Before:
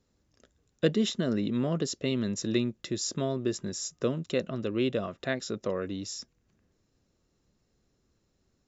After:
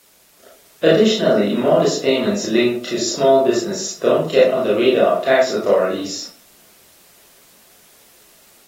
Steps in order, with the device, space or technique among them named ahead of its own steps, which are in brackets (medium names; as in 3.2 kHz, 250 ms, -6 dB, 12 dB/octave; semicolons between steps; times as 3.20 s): filmed off a television (band-pass 300–6200 Hz; peaking EQ 670 Hz +10.5 dB 0.36 oct; reverberation RT60 0.45 s, pre-delay 25 ms, DRR -7.5 dB; white noise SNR 32 dB; level rider gain up to 3 dB; trim +4 dB; AAC 48 kbps 44.1 kHz)